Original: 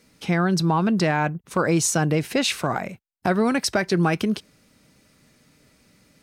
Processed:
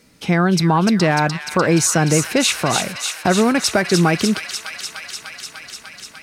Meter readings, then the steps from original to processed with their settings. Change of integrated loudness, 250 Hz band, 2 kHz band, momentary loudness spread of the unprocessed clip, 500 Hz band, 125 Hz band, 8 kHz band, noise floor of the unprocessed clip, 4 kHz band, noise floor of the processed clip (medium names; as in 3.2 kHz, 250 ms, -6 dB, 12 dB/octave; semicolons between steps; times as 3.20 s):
+5.5 dB, +5.0 dB, +6.0 dB, 7 LU, +5.0 dB, +5.0 dB, +8.0 dB, -63 dBFS, +8.0 dB, -43 dBFS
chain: feedback echo behind a high-pass 298 ms, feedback 81%, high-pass 2.2 kHz, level -4.5 dB; trim +5 dB